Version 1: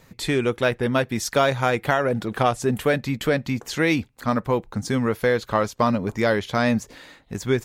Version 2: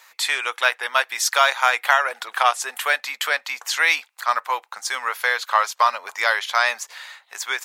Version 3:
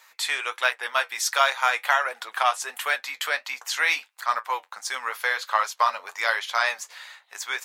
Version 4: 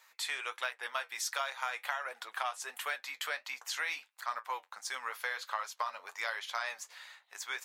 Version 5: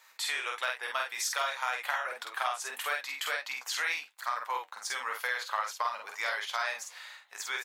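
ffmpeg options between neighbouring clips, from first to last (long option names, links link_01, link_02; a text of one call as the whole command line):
ffmpeg -i in.wav -af "highpass=frequency=880:width=0.5412,highpass=frequency=880:width=1.3066,volume=7.5dB" out.wav
ffmpeg -i in.wav -af "flanger=delay=7.2:depth=4.3:regen=-57:speed=1.4:shape=triangular" out.wav
ffmpeg -i in.wav -af "acompressor=threshold=-23dB:ratio=6,volume=-8.5dB" out.wav
ffmpeg -i in.wav -filter_complex "[0:a]asplit=2[link_01][link_02];[link_02]adelay=48,volume=-3dB[link_03];[link_01][link_03]amix=inputs=2:normalize=0,volume=2.5dB" out.wav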